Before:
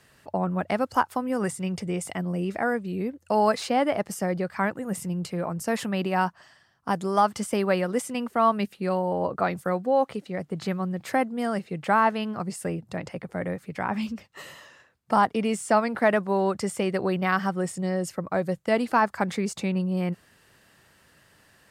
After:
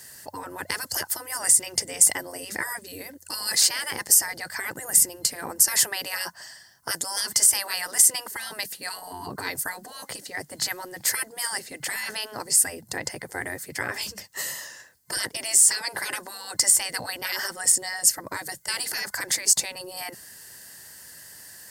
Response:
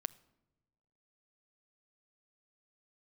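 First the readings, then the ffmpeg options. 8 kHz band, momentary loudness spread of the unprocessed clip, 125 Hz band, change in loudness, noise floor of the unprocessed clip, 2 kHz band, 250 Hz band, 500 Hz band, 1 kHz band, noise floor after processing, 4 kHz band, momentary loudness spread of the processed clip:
+21.0 dB, 9 LU, -16.0 dB, +3.5 dB, -60 dBFS, +1.5 dB, -17.5 dB, -14.0 dB, -11.5 dB, -52 dBFS, +12.0 dB, 19 LU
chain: -af "afftfilt=real='re*lt(hypot(re,im),0.112)':imag='im*lt(hypot(re,im),0.112)':win_size=1024:overlap=0.75,crystalizer=i=8:c=0,superequalizer=10b=0.501:12b=0.355:13b=0.447,volume=1.5dB"

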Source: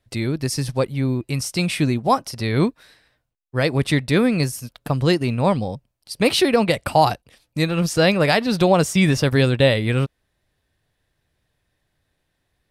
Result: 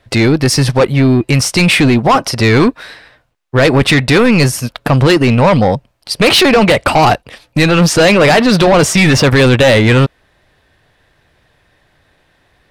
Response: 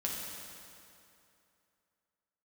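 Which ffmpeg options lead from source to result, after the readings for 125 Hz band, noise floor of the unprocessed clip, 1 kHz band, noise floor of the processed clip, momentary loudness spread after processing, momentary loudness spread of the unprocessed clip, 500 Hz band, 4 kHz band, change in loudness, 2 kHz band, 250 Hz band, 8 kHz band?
+9.5 dB, -74 dBFS, +9.0 dB, -56 dBFS, 7 LU, 9 LU, +9.5 dB, +11.0 dB, +9.5 dB, +12.0 dB, +9.5 dB, +11.5 dB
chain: -filter_complex "[0:a]asplit=2[a][b];[b]highpass=f=720:p=1,volume=6dB,asoftclip=type=tanh:threshold=-3.5dB[c];[a][c]amix=inputs=2:normalize=0,lowpass=f=2k:p=1,volume=-6dB,apsyclip=20dB,asoftclip=type=tanh:threshold=-4dB"

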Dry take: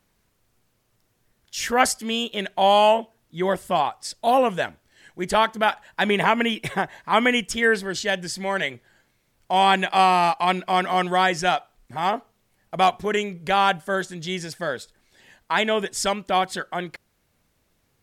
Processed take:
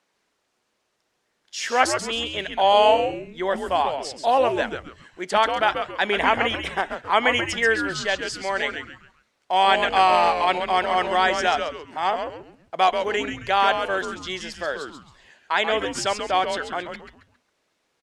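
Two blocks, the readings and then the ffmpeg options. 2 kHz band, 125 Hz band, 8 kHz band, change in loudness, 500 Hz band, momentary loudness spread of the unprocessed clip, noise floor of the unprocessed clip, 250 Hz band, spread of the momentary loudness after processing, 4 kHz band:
+0.5 dB, -7.0 dB, -2.5 dB, 0.0 dB, +0.5 dB, 11 LU, -69 dBFS, -4.5 dB, 13 LU, +0.5 dB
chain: -filter_complex "[0:a]highpass=380,lowpass=7k,asplit=5[a][b][c][d][e];[b]adelay=135,afreqshift=-150,volume=-7dB[f];[c]adelay=270,afreqshift=-300,volume=-16.6dB[g];[d]adelay=405,afreqshift=-450,volume=-26.3dB[h];[e]adelay=540,afreqshift=-600,volume=-35.9dB[i];[a][f][g][h][i]amix=inputs=5:normalize=0"

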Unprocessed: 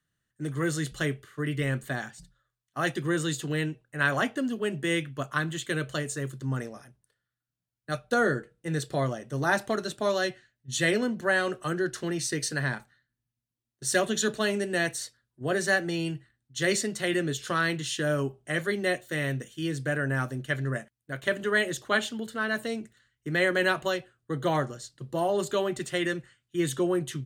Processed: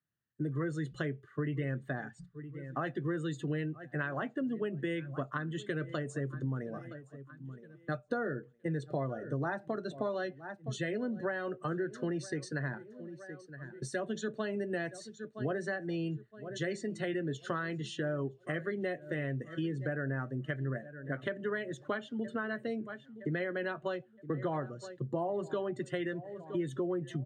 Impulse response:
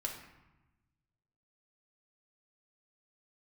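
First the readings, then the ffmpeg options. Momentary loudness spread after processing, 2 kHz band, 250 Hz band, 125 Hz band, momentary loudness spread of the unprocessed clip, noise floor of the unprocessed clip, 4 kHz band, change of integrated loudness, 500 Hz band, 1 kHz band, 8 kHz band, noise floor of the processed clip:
8 LU, -11.5 dB, -5.5 dB, -4.5 dB, 10 LU, under -85 dBFS, -15.0 dB, -8.0 dB, -7.0 dB, -8.5 dB, -18.5 dB, -61 dBFS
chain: -filter_complex "[0:a]asplit=2[a][b];[b]aecho=0:1:967|1934|2901:0.0944|0.0397|0.0167[c];[a][c]amix=inputs=2:normalize=0,acompressor=threshold=-37dB:ratio=6,highpass=90,afftdn=nr=14:nf=-48,lowpass=f=1.4k:p=1,volume=5.5dB"

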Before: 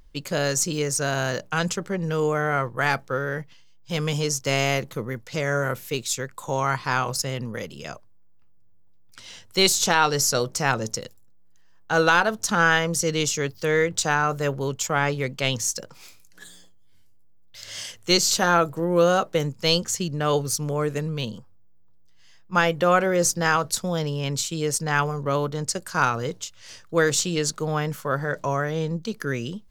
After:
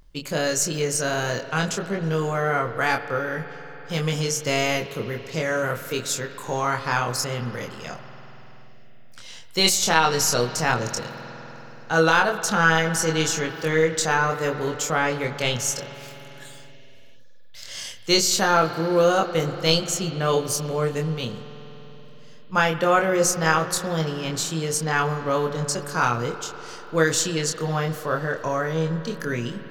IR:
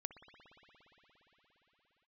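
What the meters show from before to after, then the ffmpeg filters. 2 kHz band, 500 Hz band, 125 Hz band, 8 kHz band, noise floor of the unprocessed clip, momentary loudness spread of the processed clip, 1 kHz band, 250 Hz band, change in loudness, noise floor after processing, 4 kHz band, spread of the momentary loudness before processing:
+0.5 dB, +1.0 dB, 0.0 dB, +0.5 dB, -49 dBFS, 15 LU, +1.0 dB, +0.5 dB, +0.5 dB, -41 dBFS, +1.0 dB, 12 LU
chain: -filter_complex "[0:a]asplit=2[a][b];[1:a]atrim=start_sample=2205,asetrate=52920,aresample=44100,adelay=25[c];[b][c]afir=irnorm=-1:irlink=0,volume=2.5dB[d];[a][d]amix=inputs=2:normalize=0,volume=-1dB"

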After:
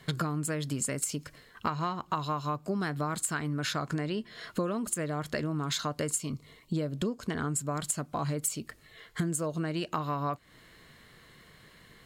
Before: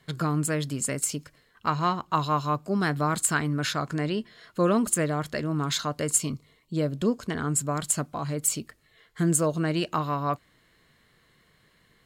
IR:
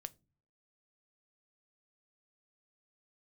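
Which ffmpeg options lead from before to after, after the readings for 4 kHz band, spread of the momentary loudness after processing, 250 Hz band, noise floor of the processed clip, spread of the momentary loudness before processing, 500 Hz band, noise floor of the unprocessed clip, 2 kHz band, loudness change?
-4.0 dB, 6 LU, -5.5 dB, -58 dBFS, 8 LU, -6.0 dB, -64 dBFS, -5.5 dB, -5.5 dB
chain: -af "acompressor=threshold=-35dB:ratio=12,volume=7dB"

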